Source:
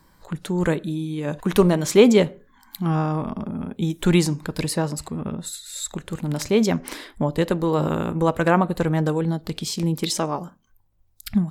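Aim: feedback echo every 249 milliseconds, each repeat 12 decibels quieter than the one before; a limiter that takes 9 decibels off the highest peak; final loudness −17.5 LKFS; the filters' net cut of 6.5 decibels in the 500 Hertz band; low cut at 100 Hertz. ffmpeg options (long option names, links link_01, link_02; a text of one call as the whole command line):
ffmpeg -i in.wav -af "highpass=100,equalizer=frequency=500:width_type=o:gain=-8.5,alimiter=limit=-15dB:level=0:latency=1,aecho=1:1:249|498|747:0.251|0.0628|0.0157,volume=9.5dB" out.wav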